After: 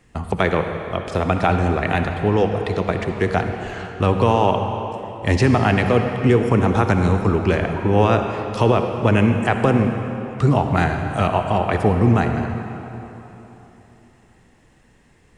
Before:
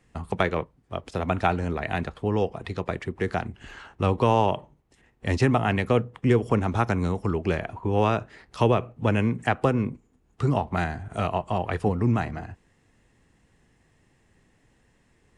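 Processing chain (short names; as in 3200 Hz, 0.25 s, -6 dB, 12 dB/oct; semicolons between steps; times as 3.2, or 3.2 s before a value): limiter -12.5 dBFS, peak gain reduction 4.5 dB; reverb RT60 3.6 s, pre-delay 54 ms, DRR 5 dB; gain +7 dB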